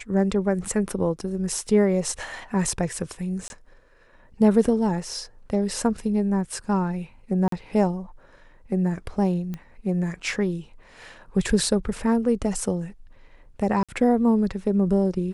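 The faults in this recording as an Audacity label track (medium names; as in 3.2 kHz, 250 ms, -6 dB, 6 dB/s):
1.670000	1.670000	dropout 2.2 ms
3.480000	3.500000	dropout 21 ms
7.480000	7.520000	dropout 43 ms
9.540000	9.540000	pop -20 dBFS
13.830000	13.890000	dropout 56 ms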